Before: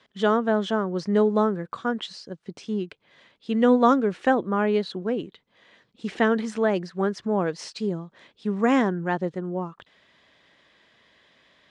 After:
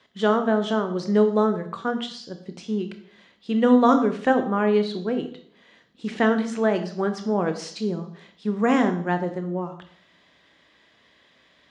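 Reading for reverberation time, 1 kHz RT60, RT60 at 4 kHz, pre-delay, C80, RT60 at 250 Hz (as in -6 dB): 0.60 s, 0.55 s, 0.70 s, 17 ms, 14.0 dB, 0.70 s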